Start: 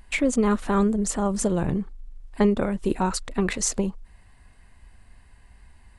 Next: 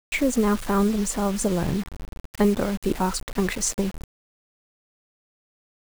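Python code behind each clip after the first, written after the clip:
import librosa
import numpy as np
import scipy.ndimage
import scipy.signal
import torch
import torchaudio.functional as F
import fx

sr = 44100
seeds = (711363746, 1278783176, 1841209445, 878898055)

y = fx.quant_dither(x, sr, seeds[0], bits=6, dither='none')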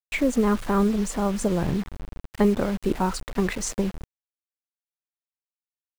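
y = fx.high_shelf(x, sr, hz=4400.0, db=-7.5)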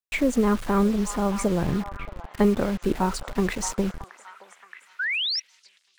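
y = fx.echo_stepped(x, sr, ms=623, hz=1000.0, octaves=0.7, feedback_pct=70, wet_db=-8.0)
y = fx.spec_paint(y, sr, seeds[1], shape='rise', start_s=4.99, length_s=0.41, low_hz=1400.0, high_hz=5800.0, level_db=-26.0)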